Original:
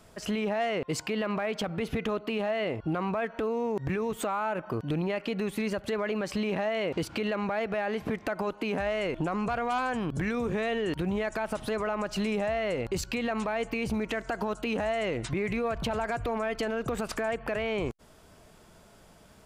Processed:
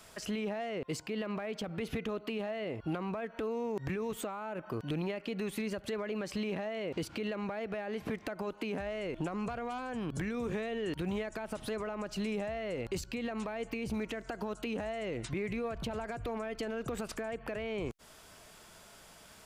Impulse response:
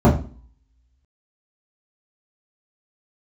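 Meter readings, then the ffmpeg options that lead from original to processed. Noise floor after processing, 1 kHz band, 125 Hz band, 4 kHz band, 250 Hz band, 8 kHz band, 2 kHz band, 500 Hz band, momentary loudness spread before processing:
-56 dBFS, -9.5 dB, -5.5 dB, -6.5 dB, -5.5 dB, -5.0 dB, -8.0 dB, -6.5 dB, 3 LU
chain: -filter_complex "[0:a]tiltshelf=f=810:g=-6,acrossover=split=510[s0][s1];[s1]acompressor=threshold=0.00708:ratio=6[s2];[s0][s2]amix=inputs=2:normalize=0"

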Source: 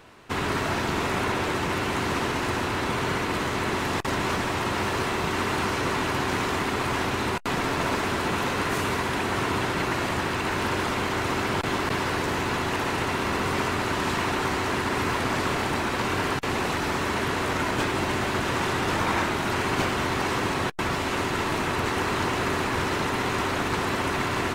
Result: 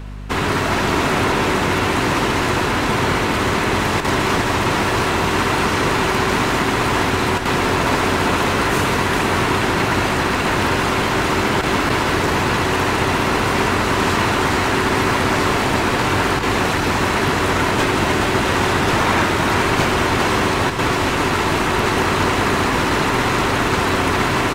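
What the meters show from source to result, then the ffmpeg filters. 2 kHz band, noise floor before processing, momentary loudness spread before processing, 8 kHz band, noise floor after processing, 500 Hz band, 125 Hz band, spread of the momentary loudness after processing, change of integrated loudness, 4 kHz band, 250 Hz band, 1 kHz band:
+8.5 dB, -28 dBFS, 1 LU, +8.5 dB, -19 dBFS, +8.5 dB, +9.0 dB, 1 LU, +8.5 dB, +8.5 dB, +8.5 dB, +8.5 dB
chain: -af "aeval=exprs='val(0)+0.0141*(sin(2*PI*50*n/s)+sin(2*PI*2*50*n/s)/2+sin(2*PI*3*50*n/s)/3+sin(2*PI*4*50*n/s)/4+sin(2*PI*5*50*n/s)/5)':c=same,aecho=1:1:412:0.531,volume=2.37"

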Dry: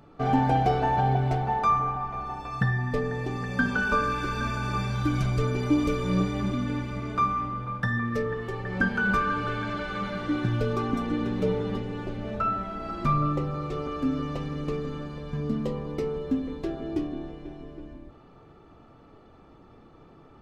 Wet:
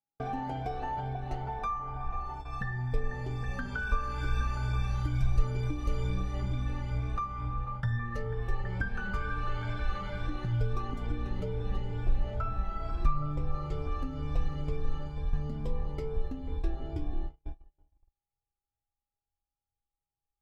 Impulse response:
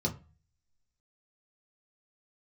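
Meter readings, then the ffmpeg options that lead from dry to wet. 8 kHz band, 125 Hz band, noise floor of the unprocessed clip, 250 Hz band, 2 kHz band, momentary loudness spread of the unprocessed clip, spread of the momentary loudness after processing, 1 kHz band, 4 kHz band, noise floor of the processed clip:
no reading, -4.0 dB, -53 dBFS, -13.0 dB, -10.0 dB, 10 LU, 6 LU, -10.0 dB, -8.5 dB, under -85 dBFS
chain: -af "afftfilt=real='re*pow(10,9/40*sin(2*PI*(1.7*log(max(b,1)*sr/1024/100)/log(2)-(2.2)*(pts-256)/sr)))':imag='im*pow(10,9/40*sin(2*PI*(1.7*log(max(b,1)*sr/1024/100)/log(2)-(2.2)*(pts-256)/sr)))':win_size=1024:overlap=0.75,aeval=exprs='val(0)+0.00501*sin(2*PI*820*n/s)':c=same,agate=range=0.00562:threshold=0.0178:ratio=16:detection=peak,acompressor=threshold=0.0447:ratio=3,asubboost=boost=12:cutoff=66,volume=0.473"

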